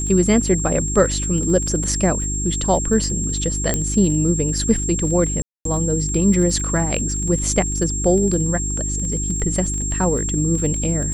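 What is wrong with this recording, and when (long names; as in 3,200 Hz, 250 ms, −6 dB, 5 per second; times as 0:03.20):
surface crackle 21 per second −26 dBFS
mains hum 50 Hz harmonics 7 −25 dBFS
whistle 7,500 Hz −24 dBFS
0:03.74: click −5 dBFS
0:05.42–0:05.65: drop-out 233 ms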